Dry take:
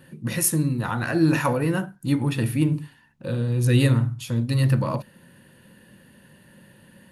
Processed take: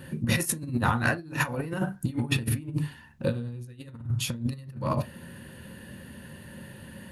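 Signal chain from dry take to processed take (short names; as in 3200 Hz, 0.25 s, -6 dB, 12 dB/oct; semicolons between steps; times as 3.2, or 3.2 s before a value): bell 69 Hz +7 dB 1.4 oct; negative-ratio compressor -27 dBFS, ratio -0.5; on a send: reverb, pre-delay 6 ms, DRR 11.5 dB; on the sum: gain -1.5 dB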